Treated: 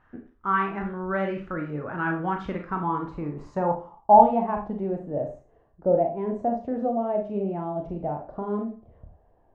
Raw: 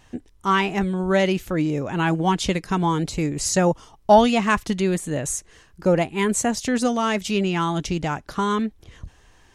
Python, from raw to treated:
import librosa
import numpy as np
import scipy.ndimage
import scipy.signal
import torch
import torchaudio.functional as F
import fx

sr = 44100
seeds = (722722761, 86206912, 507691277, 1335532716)

y = fx.rev_schroeder(x, sr, rt60_s=0.35, comb_ms=27, drr_db=2.5)
y = fx.dynamic_eq(y, sr, hz=1200.0, q=2.0, threshold_db=-32.0, ratio=4.0, max_db=-4)
y = fx.filter_sweep_lowpass(y, sr, from_hz=1400.0, to_hz=670.0, start_s=2.39, end_s=5.13, q=4.1)
y = F.gain(torch.from_numpy(y), -10.0).numpy()